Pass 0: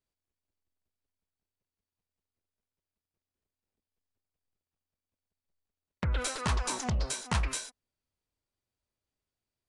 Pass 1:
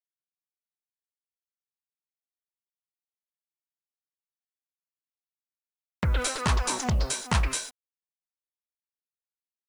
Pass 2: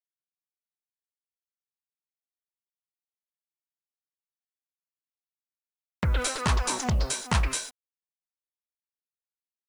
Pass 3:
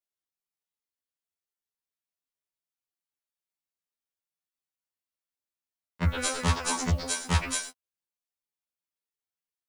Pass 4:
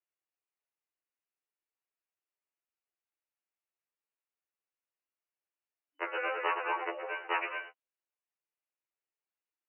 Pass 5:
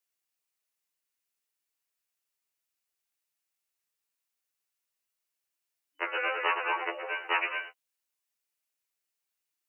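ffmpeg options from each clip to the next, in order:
ffmpeg -i in.wav -af "acrusher=bits=9:mix=0:aa=0.000001,volume=5dB" out.wav
ffmpeg -i in.wav -af anull out.wav
ffmpeg -i in.wav -af "afftfilt=real='re*2*eq(mod(b,4),0)':imag='im*2*eq(mod(b,4),0)':win_size=2048:overlap=0.75,volume=2dB" out.wav
ffmpeg -i in.wav -af "afftfilt=real='re*between(b*sr/4096,280,3000)':imag='im*between(b*sr/4096,280,3000)':win_size=4096:overlap=0.75" out.wav
ffmpeg -i in.wav -af "highshelf=frequency=2200:gain=11.5" out.wav

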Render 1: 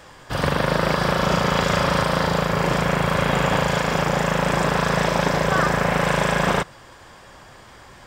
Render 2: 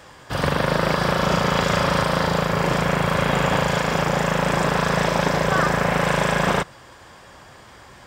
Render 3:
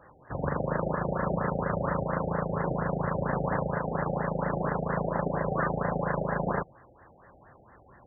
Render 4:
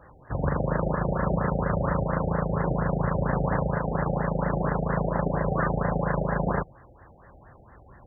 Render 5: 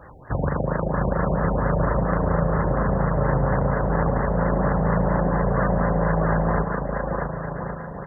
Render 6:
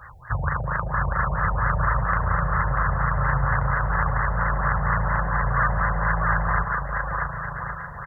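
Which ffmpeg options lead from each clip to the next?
ffmpeg -i in.wav -af "highpass=41" out.wav
ffmpeg -i in.wav -af "afftfilt=real='re*lt(b*sr/1024,800*pow(2100/800,0.5+0.5*sin(2*PI*4.3*pts/sr)))':imag='im*lt(b*sr/1024,800*pow(2100/800,0.5+0.5*sin(2*PI*4.3*pts/sr)))':win_size=1024:overlap=0.75,volume=-8dB" out.wav
ffmpeg -i in.wav -af "lowshelf=frequency=95:gain=12,volume=1.5dB" out.wav
ffmpeg -i in.wav -filter_complex "[0:a]acompressor=threshold=-26dB:ratio=6,asplit=2[link_01][link_02];[link_02]aecho=0:1:640|1120|1480|1750|1952:0.631|0.398|0.251|0.158|0.1[link_03];[link_01][link_03]amix=inputs=2:normalize=0,volume=6.5dB" out.wav
ffmpeg -i in.wav -af "firequalizer=gain_entry='entry(120,0);entry(220,-21);entry(1200,6)':delay=0.05:min_phase=1,volume=1dB" out.wav

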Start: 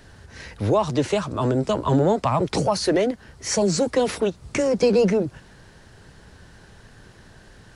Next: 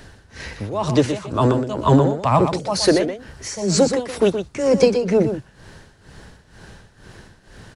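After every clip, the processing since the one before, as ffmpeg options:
ffmpeg -i in.wav -af "tremolo=f=2.1:d=0.86,aecho=1:1:122:0.376,volume=6.5dB" out.wav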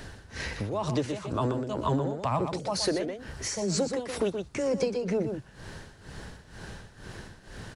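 ffmpeg -i in.wav -af "acompressor=threshold=-31dB:ratio=2.5" out.wav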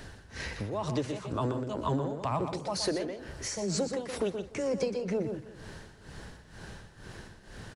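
ffmpeg -i in.wav -filter_complex "[0:a]asplit=2[link_01][link_02];[link_02]adelay=170,lowpass=frequency=3600:poles=1,volume=-16.5dB,asplit=2[link_03][link_04];[link_04]adelay=170,lowpass=frequency=3600:poles=1,volume=0.53,asplit=2[link_05][link_06];[link_06]adelay=170,lowpass=frequency=3600:poles=1,volume=0.53,asplit=2[link_07][link_08];[link_08]adelay=170,lowpass=frequency=3600:poles=1,volume=0.53,asplit=2[link_09][link_10];[link_10]adelay=170,lowpass=frequency=3600:poles=1,volume=0.53[link_11];[link_01][link_03][link_05][link_07][link_09][link_11]amix=inputs=6:normalize=0,volume=-3dB" out.wav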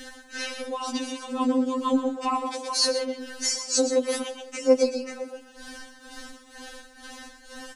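ffmpeg -i in.wav -af "bass=frequency=250:gain=-3,treble=frequency=4000:gain=5,afftfilt=real='re*3.46*eq(mod(b,12),0)':imag='im*3.46*eq(mod(b,12),0)':win_size=2048:overlap=0.75,volume=8.5dB" out.wav

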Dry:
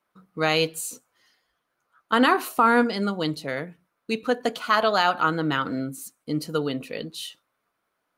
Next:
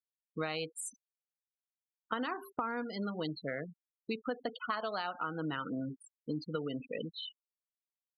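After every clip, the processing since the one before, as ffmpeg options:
ffmpeg -i in.wav -af "bandreject=frequency=395.3:width_type=h:width=4,bandreject=frequency=790.6:width_type=h:width=4,afftfilt=real='re*gte(hypot(re,im),0.0447)':imag='im*gte(hypot(re,im),0.0447)':win_size=1024:overlap=0.75,acompressor=threshold=-28dB:ratio=12,volume=-4.5dB" out.wav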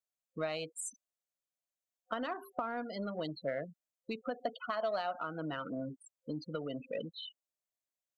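ffmpeg -i in.wav -filter_complex "[0:a]superequalizer=8b=2.82:15b=1.78,asplit=2[link_01][link_02];[link_02]asoftclip=type=tanh:threshold=-31dB,volume=-11dB[link_03];[link_01][link_03]amix=inputs=2:normalize=0,volume=-4.5dB" out.wav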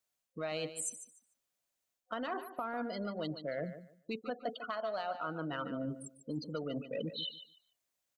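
ffmpeg -i in.wav -af "areverse,acompressor=threshold=-44dB:ratio=5,areverse,aecho=1:1:147|294|441:0.251|0.0527|0.0111,volume=8dB" out.wav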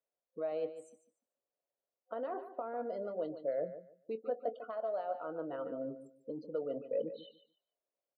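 ffmpeg -i in.wav -filter_complex "[0:a]bandpass=frequency=510:width_type=q:width=2.4:csg=0,asplit=2[link_01][link_02];[link_02]adelay=22,volume=-14dB[link_03];[link_01][link_03]amix=inputs=2:normalize=0,volume=5dB" out.wav

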